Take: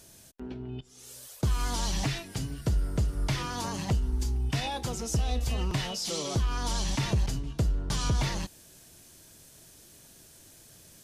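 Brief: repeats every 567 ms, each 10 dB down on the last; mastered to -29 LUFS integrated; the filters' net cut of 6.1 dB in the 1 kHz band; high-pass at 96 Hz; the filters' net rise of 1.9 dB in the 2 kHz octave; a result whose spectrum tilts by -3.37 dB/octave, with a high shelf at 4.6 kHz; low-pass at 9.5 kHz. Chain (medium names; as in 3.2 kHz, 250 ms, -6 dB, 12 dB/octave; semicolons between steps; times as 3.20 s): high-pass 96 Hz; low-pass 9.5 kHz; peaking EQ 1 kHz -9 dB; peaking EQ 2 kHz +3.5 dB; treble shelf 4.6 kHz +6.5 dB; feedback delay 567 ms, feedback 32%, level -10 dB; trim +3 dB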